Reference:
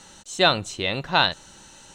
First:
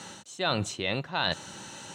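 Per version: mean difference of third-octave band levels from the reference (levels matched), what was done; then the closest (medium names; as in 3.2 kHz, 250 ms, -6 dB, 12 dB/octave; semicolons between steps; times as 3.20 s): 7.5 dB: high-pass 93 Hz 24 dB/octave; tone controls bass +1 dB, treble -4 dB; reverse; compression 6:1, threshold -32 dBFS, peak gain reduction 17.5 dB; reverse; trim +6 dB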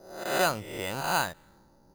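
10.0 dB: reverse spectral sustain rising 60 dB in 0.88 s; level-controlled noise filter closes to 560 Hz, open at -16 dBFS; careless resampling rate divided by 8×, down filtered, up hold; trim -8.5 dB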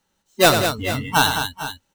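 13.5 dB: square wave that keeps the level; spectral noise reduction 28 dB; on a send: multi-tap echo 95/159/203/438/452 ms -8/-17.5/-8/-19.5/-14 dB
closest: first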